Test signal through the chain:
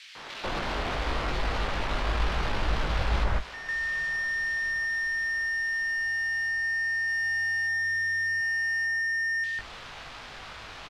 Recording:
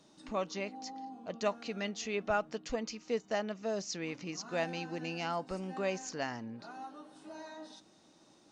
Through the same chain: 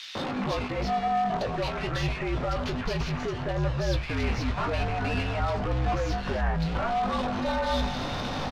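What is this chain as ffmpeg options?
ffmpeg -i in.wav -filter_complex "[0:a]aeval=exprs='val(0)+0.5*0.0141*sgn(val(0))':channel_layout=same,asplit=2[link_01][link_02];[link_02]acrusher=bits=6:mix=0:aa=0.000001,volume=-7dB[link_03];[link_01][link_03]amix=inputs=2:normalize=0,asplit=2[link_04][link_05];[link_05]highpass=frequency=720:poles=1,volume=30dB,asoftclip=type=tanh:threshold=-15.5dB[link_06];[link_04][link_06]amix=inputs=2:normalize=0,lowpass=frequency=5100:poles=1,volume=-6dB,alimiter=limit=-21.5dB:level=0:latency=1:release=320,asplit=2[link_07][link_08];[link_08]adelay=19,volume=-7dB[link_09];[link_07][link_09]amix=inputs=2:normalize=0,acrossover=split=5000[link_10][link_11];[link_11]acompressor=threshold=-43dB:ratio=4:attack=1:release=60[link_12];[link_10][link_12]amix=inputs=2:normalize=0,asubboost=boost=6:cutoff=140,acrossover=split=2300[link_13][link_14];[link_13]adelay=150[link_15];[link_15][link_14]amix=inputs=2:normalize=0,afreqshift=-62,adynamicsmooth=sensitivity=1.5:basefreq=3400,volume=-3dB" out.wav

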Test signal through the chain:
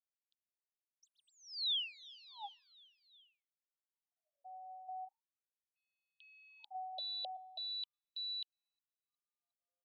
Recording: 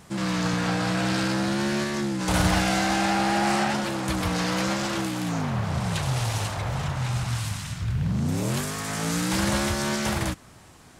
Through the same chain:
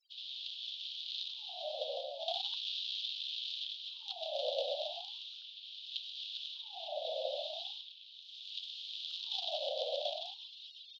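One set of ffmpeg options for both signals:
ffmpeg -i in.wav -filter_complex "[0:a]tiltshelf=frequency=1300:gain=-6,asplit=2[link_01][link_02];[link_02]aeval=exprs='sgn(val(0))*max(abs(val(0))-0.00944,0)':channel_layout=same,volume=-10.5dB[link_03];[link_01][link_03]amix=inputs=2:normalize=0,aecho=1:1:361|722|1083|1444:0.0794|0.0453|0.0258|0.0147,afftfilt=real='re*gte(hypot(re,im),0.00501)':imag='im*gte(hypot(re,im),0.00501)':win_size=1024:overlap=0.75,aeval=exprs='0.398*(cos(1*acos(clip(val(0)/0.398,-1,1)))-cos(1*PI/2))+0.00447*(cos(2*acos(clip(val(0)/0.398,-1,1)))-cos(2*PI/2))+0.1*(cos(7*acos(clip(val(0)/0.398,-1,1)))-cos(7*PI/2))+0.00251*(cos(8*acos(clip(val(0)/0.398,-1,1)))-cos(8*PI/2))':channel_layout=same,areverse,acompressor=mode=upward:threshold=-33dB:ratio=2.5,areverse,highpass=frequency=300:width_type=q:width=0.5412,highpass=frequency=300:width_type=q:width=1.307,lowpass=frequency=3500:width_type=q:width=0.5176,lowpass=frequency=3500:width_type=q:width=0.7071,lowpass=frequency=3500:width_type=q:width=1.932,afreqshift=-160,asuperstop=centerf=1500:order=12:qfactor=0.52,acompressor=threshold=-42dB:ratio=2.5,aemphasis=mode=reproduction:type=75fm,afftfilt=real='re*gte(b*sr/1024,490*pow(2100/490,0.5+0.5*sin(2*PI*0.38*pts/sr)))':imag='im*gte(b*sr/1024,490*pow(2100/490,0.5+0.5*sin(2*PI*0.38*pts/sr)))':win_size=1024:overlap=0.75,volume=14.5dB" out.wav

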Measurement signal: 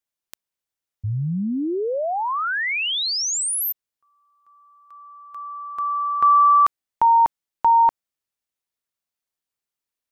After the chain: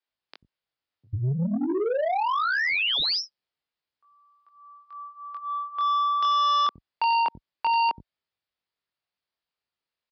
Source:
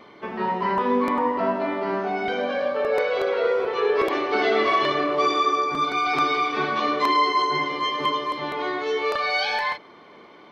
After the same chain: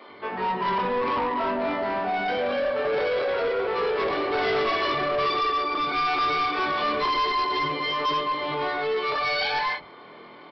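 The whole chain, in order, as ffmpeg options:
ffmpeg -i in.wav -filter_complex "[0:a]highpass=42,acrossover=split=260[link_01][link_02];[link_01]adelay=90[link_03];[link_03][link_02]amix=inputs=2:normalize=0,flanger=delay=20:depth=4.4:speed=0.24,aresample=11025,asoftclip=type=tanh:threshold=-26.5dB,aresample=44100,volume=5.5dB" out.wav

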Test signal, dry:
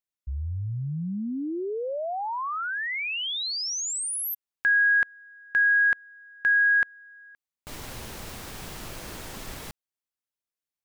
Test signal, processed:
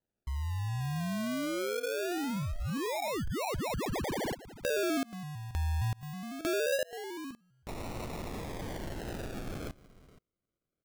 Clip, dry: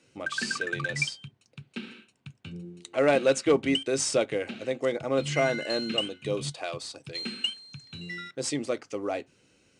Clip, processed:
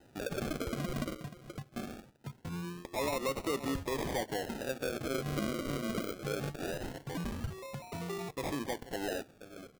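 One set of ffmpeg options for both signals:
ffmpeg -i in.wav -af "aecho=1:1:478:0.0841,acrusher=samples=39:mix=1:aa=0.000001:lfo=1:lforange=23.4:lforate=0.22,acompressor=threshold=-36dB:ratio=3:attack=1.3:release=161:knee=6:detection=peak,volume=2.5dB" out.wav

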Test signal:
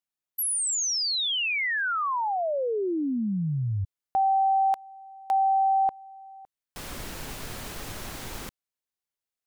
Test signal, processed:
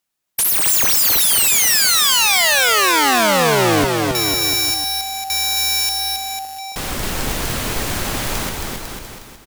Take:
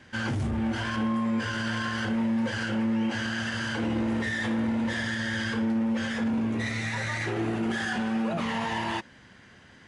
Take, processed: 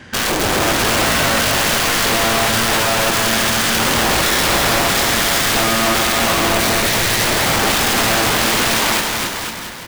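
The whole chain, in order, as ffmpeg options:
ffmpeg -i in.wav -af "aeval=exprs='(mod(21.1*val(0)+1,2)-1)/21.1':channel_layout=same,aecho=1:1:270|499.5|694.6|860.4|1001:0.631|0.398|0.251|0.158|0.1,apsyclip=22.5dB,volume=-9dB" out.wav

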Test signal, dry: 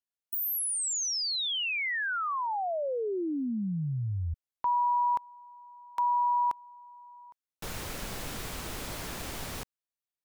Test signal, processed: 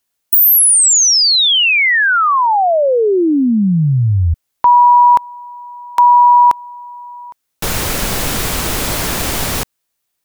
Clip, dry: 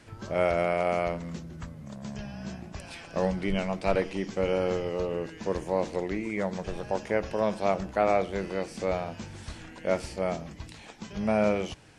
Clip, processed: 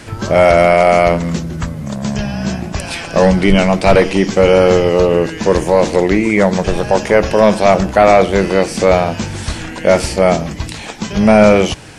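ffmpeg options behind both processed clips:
ffmpeg -i in.wav -af "apsyclip=20.5dB,highshelf=frequency=6900:gain=4,volume=-1.5dB" out.wav

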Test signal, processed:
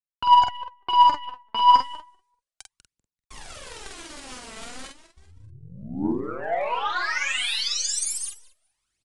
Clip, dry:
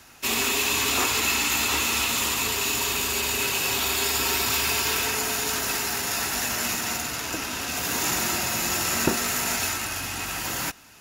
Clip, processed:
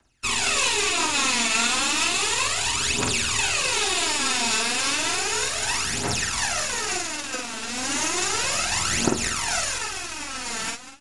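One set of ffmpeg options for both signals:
ffmpeg -i in.wav -filter_complex "[0:a]acrossover=split=240|3000[link_01][link_02][link_03];[link_01]acompressor=threshold=-52dB:ratio=2[link_04];[link_04][link_02][link_03]amix=inputs=3:normalize=0,lowshelf=frequency=79:gain=5.5,alimiter=limit=-15.5dB:level=0:latency=1:release=183,areverse,acompressor=mode=upward:threshold=-32dB:ratio=2.5,areverse,aecho=1:1:195|390|585:0.473|0.128|0.0345,aeval=exprs='0.224*(cos(1*acos(clip(val(0)/0.224,-1,1)))-cos(1*PI/2))+0.0112*(cos(3*acos(clip(val(0)/0.224,-1,1)))-cos(3*PI/2))+0.0251*(cos(7*acos(clip(val(0)/0.224,-1,1)))-cos(7*PI/2))+0.00178*(cos(8*acos(clip(val(0)/0.224,-1,1)))-cos(8*PI/2))':channel_layout=same,aphaser=in_gain=1:out_gain=1:delay=4.6:decay=0.77:speed=0.33:type=triangular,adynamicequalizer=threshold=0.00224:dfrequency=100:dqfactor=1.2:tfrequency=100:tqfactor=1.2:attack=5:release=100:ratio=0.375:range=3:mode=boostabove:tftype=bell,asplit=2[link_05][link_06];[link_06]adelay=47,volume=-3.5dB[link_07];[link_05][link_07]amix=inputs=2:normalize=0,aresample=22050,aresample=44100" out.wav

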